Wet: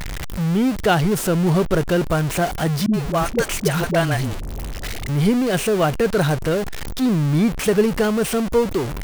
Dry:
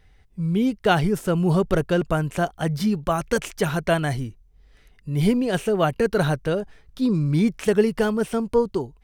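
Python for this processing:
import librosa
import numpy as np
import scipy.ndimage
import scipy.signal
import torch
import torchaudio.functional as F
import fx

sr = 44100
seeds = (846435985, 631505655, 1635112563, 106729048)

y = x + 0.5 * 10.0 ** (-21.5 / 20.0) * np.sign(x)
y = fx.dispersion(y, sr, late='highs', ms=75.0, hz=340.0, at=(2.86, 5.09))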